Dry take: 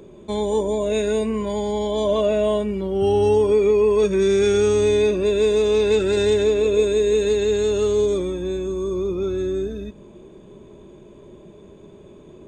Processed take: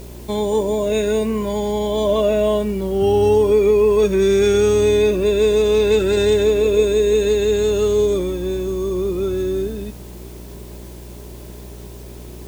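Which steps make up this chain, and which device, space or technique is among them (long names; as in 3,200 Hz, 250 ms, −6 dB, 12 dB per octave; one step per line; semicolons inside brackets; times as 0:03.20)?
video cassette with head-switching buzz (hum with harmonics 60 Hz, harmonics 17, −39 dBFS −7 dB per octave; white noise bed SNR 29 dB)
level +2.5 dB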